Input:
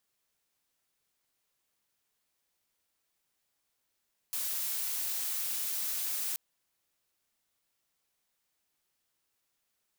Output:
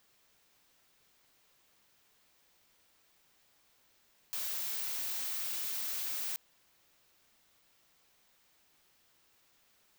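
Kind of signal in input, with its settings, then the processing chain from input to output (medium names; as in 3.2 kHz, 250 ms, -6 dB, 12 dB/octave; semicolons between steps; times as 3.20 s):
noise blue, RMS -34 dBFS 2.03 s
peaking EQ 11 kHz -7.5 dB 1.1 oct; in parallel at -1 dB: compressor with a negative ratio -44 dBFS, ratio -0.5; on the sum: saturation -30.5 dBFS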